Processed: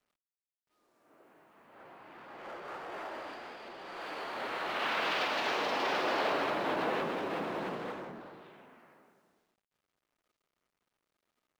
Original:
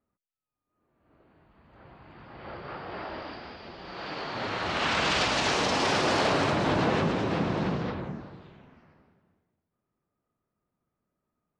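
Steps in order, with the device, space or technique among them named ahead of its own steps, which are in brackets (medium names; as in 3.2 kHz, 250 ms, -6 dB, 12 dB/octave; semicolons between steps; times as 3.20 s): phone line with mismatched companding (band-pass 350–3400 Hz; companding laws mixed up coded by mu); trim -5.5 dB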